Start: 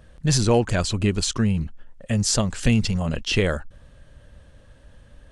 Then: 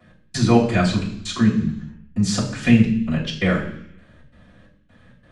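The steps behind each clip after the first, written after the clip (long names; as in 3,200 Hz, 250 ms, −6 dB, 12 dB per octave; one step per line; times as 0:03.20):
gate pattern "x..xx.xx" 132 BPM −60 dB
convolution reverb RT60 0.70 s, pre-delay 3 ms, DRR −15.5 dB
level −12 dB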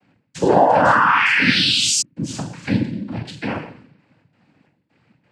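sound drawn into the spectrogram rise, 0:00.41–0:02.02, 430–5,900 Hz −12 dBFS
dynamic equaliser 840 Hz, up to +5 dB, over −32 dBFS, Q 0.76
cochlear-implant simulation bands 8
level −6 dB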